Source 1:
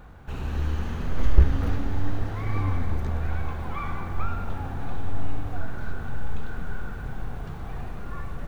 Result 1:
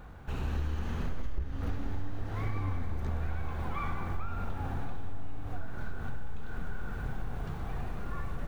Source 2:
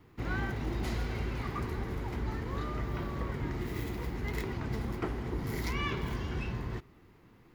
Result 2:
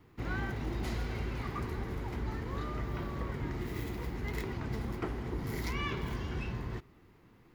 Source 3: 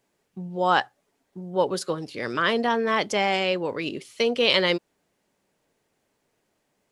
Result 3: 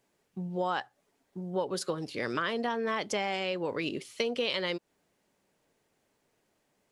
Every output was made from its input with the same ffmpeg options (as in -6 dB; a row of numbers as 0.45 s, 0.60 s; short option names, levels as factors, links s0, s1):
-af "acompressor=threshold=0.0501:ratio=6,volume=0.841"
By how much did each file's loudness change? -7.5 LU, -1.5 LU, -8.5 LU